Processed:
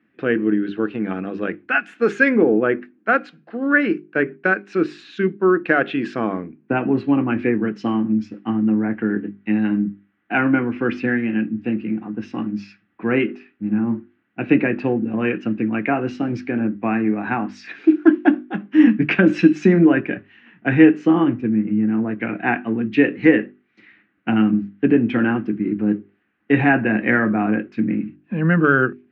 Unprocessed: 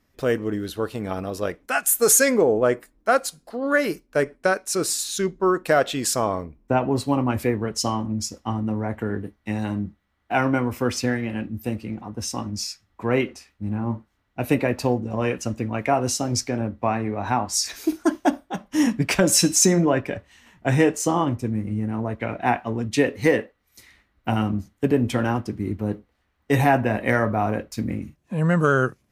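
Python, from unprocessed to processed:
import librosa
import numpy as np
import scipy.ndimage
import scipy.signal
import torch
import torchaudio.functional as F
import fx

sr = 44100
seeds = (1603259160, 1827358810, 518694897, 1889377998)

y = fx.cabinet(x, sr, low_hz=130.0, low_slope=24, high_hz=2800.0, hz=(210.0, 320.0, 600.0, 960.0, 1600.0, 2600.0), db=(8, 10, -7, -7, 8, 6))
y = fx.hum_notches(y, sr, base_hz=50, count=8)
y = F.gain(torch.from_numpy(y), 1.0).numpy()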